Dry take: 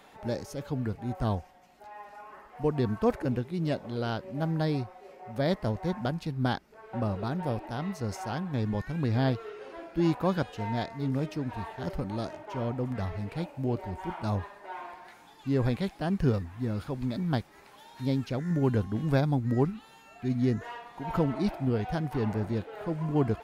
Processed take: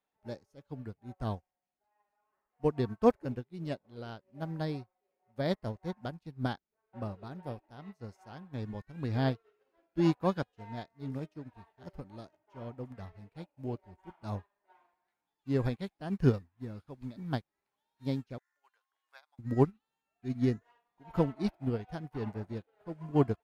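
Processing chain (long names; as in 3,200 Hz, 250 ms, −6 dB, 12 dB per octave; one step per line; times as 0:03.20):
0:18.38–0:19.39: high-pass filter 950 Hz 24 dB per octave
expander for the loud parts 2.5 to 1, over −45 dBFS
level +3 dB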